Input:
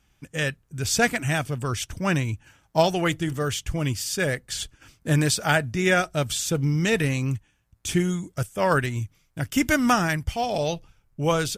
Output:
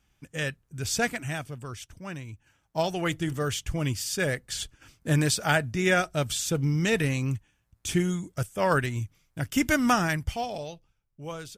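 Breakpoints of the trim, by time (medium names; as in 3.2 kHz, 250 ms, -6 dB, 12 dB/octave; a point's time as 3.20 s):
0.89 s -4.5 dB
2.15 s -15 dB
3.24 s -2.5 dB
10.33 s -2.5 dB
10.75 s -15 dB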